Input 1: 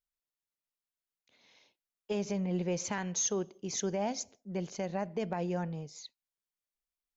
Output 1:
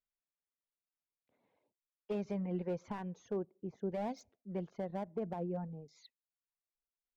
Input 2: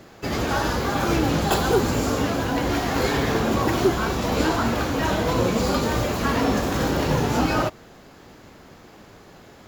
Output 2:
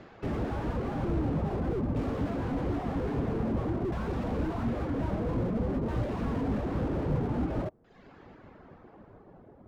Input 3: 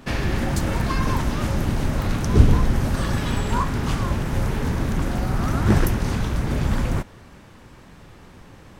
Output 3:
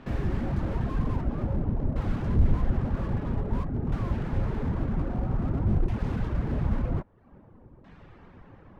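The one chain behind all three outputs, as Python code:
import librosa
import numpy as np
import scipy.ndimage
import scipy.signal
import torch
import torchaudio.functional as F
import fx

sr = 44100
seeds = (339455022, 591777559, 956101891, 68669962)

y = fx.dereverb_blind(x, sr, rt60_s=0.65)
y = fx.filter_lfo_lowpass(y, sr, shape='saw_down', hz=0.51, low_hz=570.0, high_hz=3000.0, q=0.72)
y = fx.slew_limit(y, sr, full_power_hz=17.0)
y = F.gain(torch.from_numpy(y), -3.0).numpy()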